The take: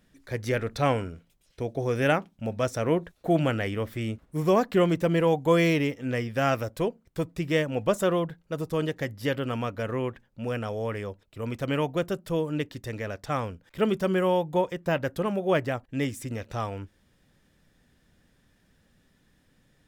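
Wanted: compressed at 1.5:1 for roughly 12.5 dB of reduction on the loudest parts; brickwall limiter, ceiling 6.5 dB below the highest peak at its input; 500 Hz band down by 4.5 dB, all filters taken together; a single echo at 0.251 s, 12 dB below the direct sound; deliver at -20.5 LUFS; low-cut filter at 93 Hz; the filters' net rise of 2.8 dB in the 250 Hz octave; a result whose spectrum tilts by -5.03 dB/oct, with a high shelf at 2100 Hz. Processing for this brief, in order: HPF 93 Hz; bell 250 Hz +7 dB; bell 500 Hz -8.5 dB; high shelf 2100 Hz +8.5 dB; compressor 1.5:1, threshold -54 dBFS; limiter -27 dBFS; echo 0.251 s -12 dB; gain +19 dB

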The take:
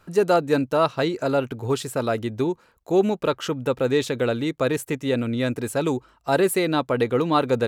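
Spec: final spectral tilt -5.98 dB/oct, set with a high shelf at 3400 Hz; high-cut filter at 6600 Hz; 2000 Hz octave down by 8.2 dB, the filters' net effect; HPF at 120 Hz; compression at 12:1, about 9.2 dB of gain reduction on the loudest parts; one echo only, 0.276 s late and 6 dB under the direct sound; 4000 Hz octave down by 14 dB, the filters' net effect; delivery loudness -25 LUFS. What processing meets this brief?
HPF 120 Hz; LPF 6600 Hz; bell 2000 Hz -7 dB; high shelf 3400 Hz -8 dB; bell 4000 Hz -9 dB; compressor 12:1, threshold -24 dBFS; echo 0.276 s -6 dB; gain +4.5 dB

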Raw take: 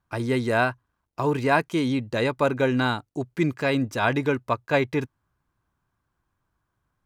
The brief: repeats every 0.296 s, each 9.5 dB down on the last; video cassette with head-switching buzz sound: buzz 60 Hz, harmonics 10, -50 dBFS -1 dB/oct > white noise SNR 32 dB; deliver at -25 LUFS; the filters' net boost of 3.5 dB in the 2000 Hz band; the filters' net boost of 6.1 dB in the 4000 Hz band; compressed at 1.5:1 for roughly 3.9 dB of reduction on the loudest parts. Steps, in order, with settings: bell 2000 Hz +3.5 dB; bell 4000 Hz +6 dB; compressor 1.5:1, threshold -26 dBFS; feedback echo 0.296 s, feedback 33%, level -9.5 dB; buzz 60 Hz, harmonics 10, -50 dBFS -1 dB/oct; white noise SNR 32 dB; gain +1 dB

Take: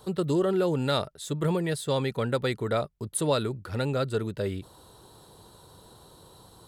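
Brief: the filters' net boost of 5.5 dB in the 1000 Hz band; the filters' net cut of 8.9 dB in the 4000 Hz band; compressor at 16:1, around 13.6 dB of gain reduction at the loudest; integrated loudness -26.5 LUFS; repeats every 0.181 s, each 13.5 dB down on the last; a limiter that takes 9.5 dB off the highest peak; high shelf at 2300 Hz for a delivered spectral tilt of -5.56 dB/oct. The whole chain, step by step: bell 1000 Hz +8.5 dB; high shelf 2300 Hz -3.5 dB; bell 4000 Hz -7.5 dB; compressor 16:1, threshold -31 dBFS; limiter -30.5 dBFS; feedback echo 0.181 s, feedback 21%, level -13.5 dB; gain +14 dB

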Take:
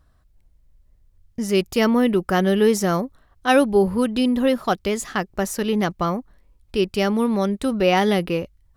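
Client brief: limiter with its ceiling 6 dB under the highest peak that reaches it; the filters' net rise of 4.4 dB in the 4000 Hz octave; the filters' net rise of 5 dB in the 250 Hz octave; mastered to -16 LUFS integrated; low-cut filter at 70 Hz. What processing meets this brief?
HPF 70 Hz; bell 250 Hz +6 dB; bell 4000 Hz +6.5 dB; gain +2.5 dB; limiter -5.5 dBFS

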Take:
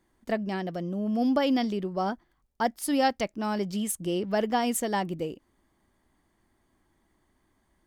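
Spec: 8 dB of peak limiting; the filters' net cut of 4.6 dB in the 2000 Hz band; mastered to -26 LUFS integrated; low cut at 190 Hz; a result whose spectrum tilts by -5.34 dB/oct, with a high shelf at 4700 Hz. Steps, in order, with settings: HPF 190 Hz; bell 2000 Hz -4.5 dB; high shelf 4700 Hz -8 dB; gain +6 dB; limiter -16 dBFS

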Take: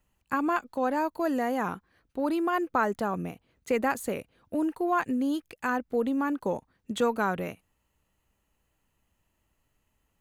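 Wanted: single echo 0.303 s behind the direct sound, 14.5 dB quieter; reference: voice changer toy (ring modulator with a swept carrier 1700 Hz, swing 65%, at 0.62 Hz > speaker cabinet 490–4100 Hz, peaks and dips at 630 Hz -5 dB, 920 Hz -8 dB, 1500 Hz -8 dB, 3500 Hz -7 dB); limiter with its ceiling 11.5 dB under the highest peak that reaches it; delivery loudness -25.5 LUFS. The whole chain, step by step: limiter -25 dBFS; echo 0.303 s -14.5 dB; ring modulator with a swept carrier 1700 Hz, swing 65%, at 0.62 Hz; speaker cabinet 490–4100 Hz, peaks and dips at 630 Hz -5 dB, 920 Hz -8 dB, 1500 Hz -8 dB, 3500 Hz -7 dB; gain +13 dB

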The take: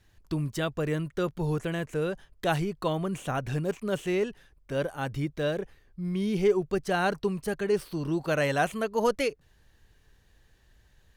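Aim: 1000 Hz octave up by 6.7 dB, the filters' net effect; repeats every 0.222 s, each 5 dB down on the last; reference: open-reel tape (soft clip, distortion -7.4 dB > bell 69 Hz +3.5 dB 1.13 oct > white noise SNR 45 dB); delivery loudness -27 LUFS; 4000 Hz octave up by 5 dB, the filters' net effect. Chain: bell 1000 Hz +9 dB; bell 4000 Hz +6 dB; feedback echo 0.222 s, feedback 56%, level -5 dB; soft clip -26 dBFS; bell 69 Hz +3.5 dB 1.13 oct; white noise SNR 45 dB; gain +4 dB

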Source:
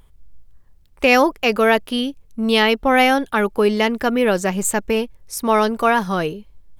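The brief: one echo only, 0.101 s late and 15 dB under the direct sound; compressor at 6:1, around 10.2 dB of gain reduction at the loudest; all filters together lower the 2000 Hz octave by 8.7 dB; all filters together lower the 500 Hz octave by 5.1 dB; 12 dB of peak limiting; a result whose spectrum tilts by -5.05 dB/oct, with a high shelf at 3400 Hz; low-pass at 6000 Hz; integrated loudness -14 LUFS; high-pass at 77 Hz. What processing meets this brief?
HPF 77 Hz; LPF 6000 Hz; bell 500 Hz -5.5 dB; bell 2000 Hz -8.5 dB; high shelf 3400 Hz -7.5 dB; compressor 6:1, threshold -26 dBFS; limiter -28 dBFS; echo 0.101 s -15 dB; gain +22.5 dB

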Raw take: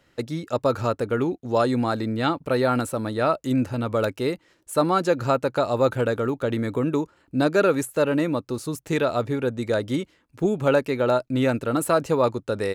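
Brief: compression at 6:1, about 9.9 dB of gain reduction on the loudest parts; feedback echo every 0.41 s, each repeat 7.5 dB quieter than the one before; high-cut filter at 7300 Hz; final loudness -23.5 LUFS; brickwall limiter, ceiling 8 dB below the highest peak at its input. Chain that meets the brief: LPF 7300 Hz; compressor 6:1, threshold -26 dBFS; limiter -24 dBFS; feedback echo 0.41 s, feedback 42%, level -7.5 dB; gain +9.5 dB

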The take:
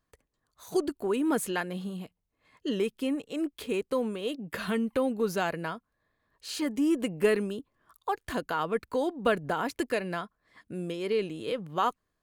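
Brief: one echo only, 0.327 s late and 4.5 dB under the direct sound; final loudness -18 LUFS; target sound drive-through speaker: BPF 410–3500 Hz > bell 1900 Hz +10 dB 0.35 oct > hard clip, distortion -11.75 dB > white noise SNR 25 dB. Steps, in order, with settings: BPF 410–3500 Hz; bell 1900 Hz +10 dB 0.35 oct; echo 0.327 s -4.5 dB; hard clip -24 dBFS; white noise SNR 25 dB; gain +15 dB

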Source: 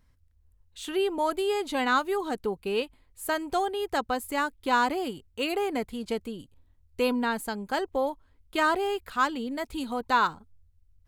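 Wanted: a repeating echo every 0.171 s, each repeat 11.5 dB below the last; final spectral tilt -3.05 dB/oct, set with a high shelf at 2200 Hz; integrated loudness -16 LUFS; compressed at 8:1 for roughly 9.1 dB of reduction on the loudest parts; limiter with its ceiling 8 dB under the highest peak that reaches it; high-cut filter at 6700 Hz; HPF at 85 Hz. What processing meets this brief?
HPF 85 Hz; LPF 6700 Hz; high shelf 2200 Hz +8 dB; compressor 8:1, threshold -26 dBFS; limiter -23.5 dBFS; feedback echo 0.171 s, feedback 27%, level -11.5 dB; gain +17.5 dB

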